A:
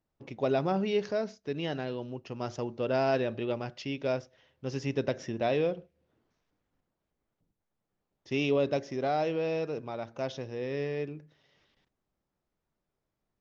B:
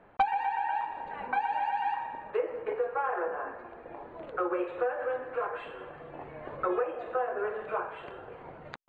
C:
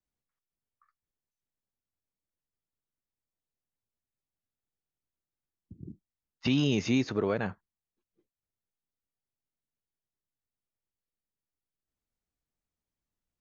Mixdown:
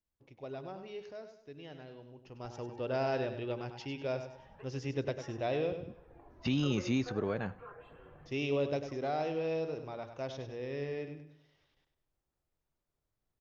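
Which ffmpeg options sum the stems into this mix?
ffmpeg -i stem1.wav -i stem2.wav -i stem3.wav -filter_complex "[0:a]equalizer=frequency=200:width=3.5:gain=-9,volume=-5.5dB,afade=type=in:start_time=2.12:duration=0.74:silence=0.316228,asplit=3[link_01][link_02][link_03];[link_02]volume=-9.5dB[link_04];[1:a]flanger=delay=0:depth=3.4:regen=-30:speed=0.34:shape=sinusoidal,bass=frequency=250:gain=13,treble=frequency=4000:gain=3,adelay=2250,volume=-13dB[link_05];[2:a]volume=-6dB,asplit=2[link_06][link_07];[link_07]volume=-23.5dB[link_08];[link_03]apad=whole_len=490909[link_09];[link_05][link_09]sidechaincompress=threshold=-60dB:ratio=3:attack=16:release=161[link_10];[link_04][link_08]amix=inputs=2:normalize=0,aecho=0:1:99|198|297|396|495:1|0.36|0.13|0.0467|0.0168[link_11];[link_01][link_10][link_06][link_11]amix=inputs=4:normalize=0,lowshelf=frequency=110:gain=6.5" out.wav

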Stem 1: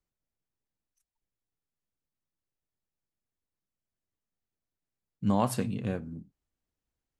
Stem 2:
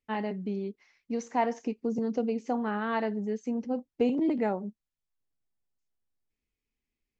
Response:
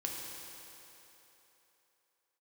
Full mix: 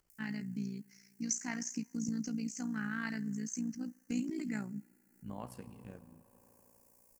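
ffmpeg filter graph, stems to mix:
-filter_complex "[0:a]volume=-17dB,asplit=2[link_01][link_02];[link_02]volume=-10.5dB[link_03];[1:a]aexciter=amount=12:drive=2.7:freq=4700,firequalizer=gain_entry='entry(220,0);entry(470,-23);entry(1000,-15);entry(1500,2);entry(3800,-4);entry(8400,3)':delay=0.05:min_phase=1,adelay=100,volume=-1.5dB,asplit=2[link_04][link_05];[link_05]volume=-24dB[link_06];[2:a]atrim=start_sample=2205[link_07];[link_03][link_06]amix=inputs=2:normalize=0[link_08];[link_08][link_07]afir=irnorm=-1:irlink=0[link_09];[link_01][link_04][link_09]amix=inputs=3:normalize=0,acompressor=mode=upward:threshold=-53dB:ratio=2.5,tremolo=f=58:d=0.71,equalizer=frequency=3700:width_type=o:width=0.21:gain=-10"

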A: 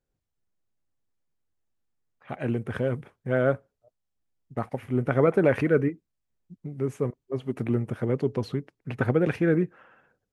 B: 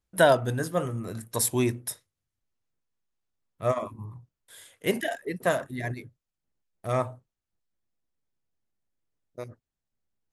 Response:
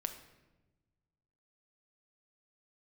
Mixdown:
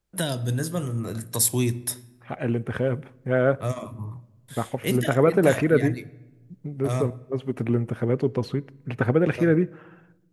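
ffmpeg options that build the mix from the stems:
-filter_complex "[0:a]volume=-2dB,asplit=2[link_01][link_02];[link_02]volume=-13dB[link_03];[1:a]acrossover=split=270|3000[link_04][link_05][link_06];[link_05]acompressor=threshold=-37dB:ratio=6[link_07];[link_04][link_07][link_06]amix=inputs=3:normalize=0,volume=-1dB,asplit=2[link_08][link_09];[link_09]volume=-5.5dB[link_10];[2:a]atrim=start_sample=2205[link_11];[link_03][link_10]amix=inputs=2:normalize=0[link_12];[link_12][link_11]afir=irnorm=-1:irlink=0[link_13];[link_01][link_08][link_13]amix=inputs=3:normalize=0,dynaudnorm=framelen=100:gausssize=7:maxgain=3dB"

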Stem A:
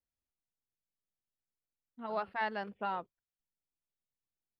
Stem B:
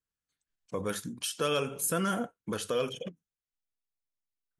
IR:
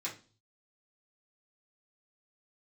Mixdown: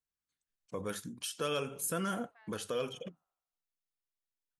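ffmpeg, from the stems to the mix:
-filter_complex "[0:a]highpass=640,bandreject=frequency=920:width=7.3,acompressor=threshold=-42dB:ratio=4,volume=-18.5dB,asplit=2[link_01][link_02];[link_02]volume=-13.5dB[link_03];[1:a]volume=-5dB[link_04];[link_03]aecho=0:1:78|156|234|312|390|468|546|624|702:1|0.58|0.336|0.195|0.113|0.0656|0.0381|0.0221|0.0128[link_05];[link_01][link_04][link_05]amix=inputs=3:normalize=0"

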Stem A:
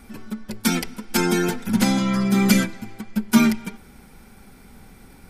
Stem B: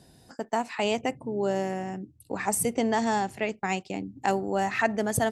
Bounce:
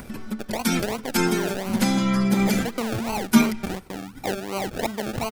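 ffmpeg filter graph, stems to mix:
ffmpeg -i stem1.wav -i stem2.wav -filter_complex "[0:a]agate=range=-12dB:threshold=-43dB:ratio=16:detection=peak,volume=0dB[link_01];[1:a]acrusher=samples=35:mix=1:aa=0.000001:lfo=1:lforange=21:lforate=2.8,volume=-2dB,asplit=2[link_02][link_03];[link_03]apad=whole_len=237854[link_04];[link_01][link_04]sidechaincompress=threshold=-34dB:ratio=8:attack=50:release=178[link_05];[link_05][link_02]amix=inputs=2:normalize=0,acompressor=mode=upward:threshold=-28dB:ratio=2.5" out.wav

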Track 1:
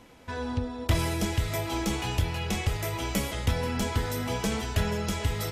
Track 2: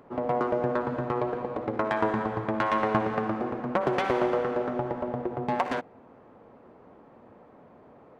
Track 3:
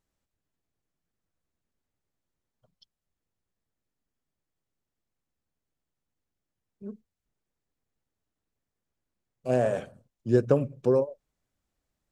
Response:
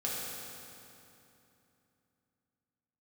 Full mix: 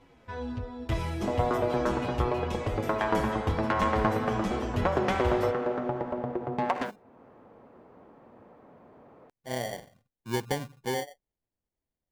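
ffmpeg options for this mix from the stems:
-filter_complex "[0:a]lowpass=frequency=2400:poles=1,asplit=2[link_01][link_02];[link_02]adelay=7.7,afreqshift=-2.9[link_03];[link_01][link_03]amix=inputs=2:normalize=1,volume=-1dB[link_04];[1:a]adelay=1100,volume=-1dB[link_05];[2:a]acrusher=samples=34:mix=1:aa=0.000001,volume=-8.5dB,asplit=2[link_06][link_07];[link_07]apad=whole_len=410016[link_08];[link_05][link_08]sidechaincompress=threshold=-51dB:ratio=3:attack=16:release=502[link_09];[link_04][link_09][link_06]amix=inputs=3:normalize=0"

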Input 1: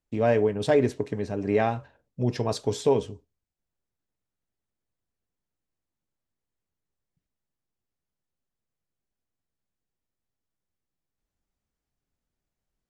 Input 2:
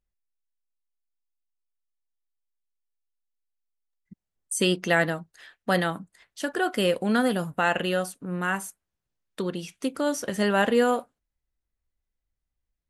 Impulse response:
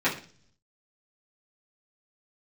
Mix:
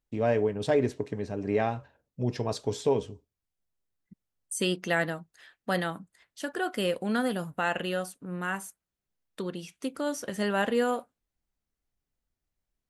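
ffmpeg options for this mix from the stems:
-filter_complex "[0:a]volume=-3.5dB[link_01];[1:a]volume=-5dB[link_02];[link_01][link_02]amix=inputs=2:normalize=0"

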